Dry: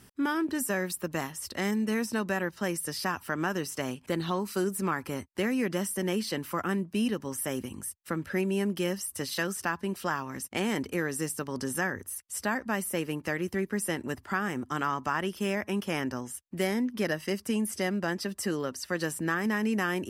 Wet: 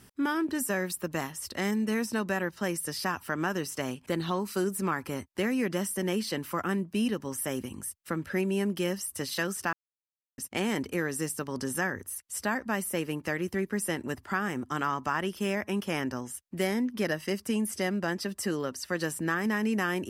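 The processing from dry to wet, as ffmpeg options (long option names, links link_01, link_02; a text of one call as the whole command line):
ffmpeg -i in.wav -filter_complex "[0:a]asplit=3[link_01][link_02][link_03];[link_01]atrim=end=9.73,asetpts=PTS-STARTPTS,afade=type=out:start_time=9.726:duration=0.004:curve=hsin[link_04];[link_02]atrim=start=9.73:end=10.38,asetpts=PTS-STARTPTS,volume=0[link_05];[link_03]atrim=start=10.38,asetpts=PTS-STARTPTS,afade=type=in:duration=0.004:curve=hsin[link_06];[link_04][link_05][link_06]concat=n=3:v=0:a=1" out.wav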